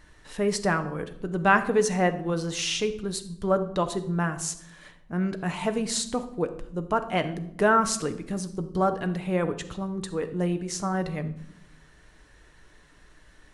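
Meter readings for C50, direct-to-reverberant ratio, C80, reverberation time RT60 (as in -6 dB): 13.0 dB, 8.0 dB, 16.0 dB, no single decay rate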